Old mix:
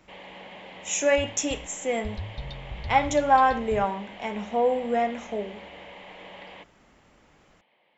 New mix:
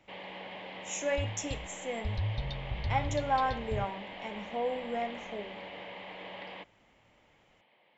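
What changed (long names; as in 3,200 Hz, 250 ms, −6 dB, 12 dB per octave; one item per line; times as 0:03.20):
speech −10.0 dB
master: add parametric band 110 Hz +9 dB 0.25 octaves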